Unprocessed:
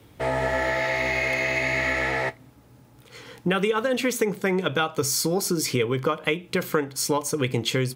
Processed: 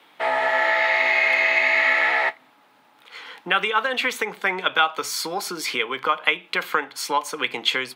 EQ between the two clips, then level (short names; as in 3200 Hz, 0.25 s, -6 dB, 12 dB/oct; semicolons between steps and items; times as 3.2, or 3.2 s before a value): Bessel high-pass 300 Hz, order 8; band shelf 1700 Hz +12.5 dB 2.9 oct; -5.5 dB